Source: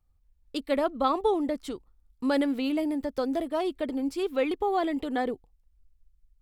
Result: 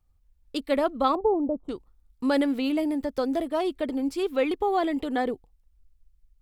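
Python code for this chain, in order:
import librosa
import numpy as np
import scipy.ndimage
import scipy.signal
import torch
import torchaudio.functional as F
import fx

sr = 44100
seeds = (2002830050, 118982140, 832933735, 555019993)

y = fx.cheby2_lowpass(x, sr, hz=1800.0, order=4, stop_db=40, at=(1.15, 1.69))
y = y * 10.0 ** (2.0 / 20.0)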